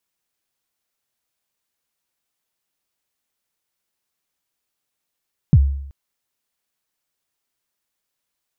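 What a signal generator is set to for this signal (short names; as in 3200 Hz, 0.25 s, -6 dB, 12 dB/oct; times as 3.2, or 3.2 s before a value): kick drum length 0.38 s, from 180 Hz, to 69 Hz, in 50 ms, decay 0.74 s, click off, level -5 dB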